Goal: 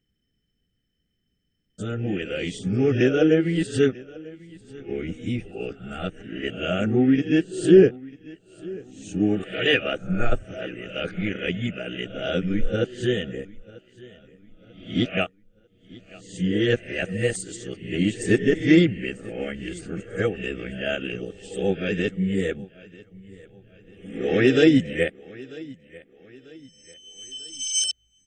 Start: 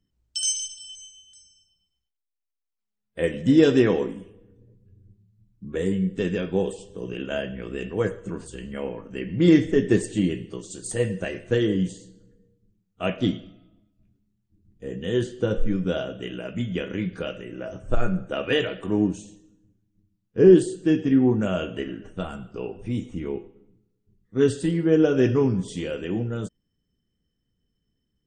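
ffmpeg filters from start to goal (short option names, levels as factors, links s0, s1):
-filter_complex "[0:a]areverse,asuperstop=centerf=1000:order=8:qfactor=2.9,equalizer=f=2300:t=o:w=1.1:g=8,asplit=2[s0][s1];[s1]aecho=0:1:943|1886|2829:0.0841|0.0337|0.0135[s2];[s0][s2]amix=inputs=2:normalize=0"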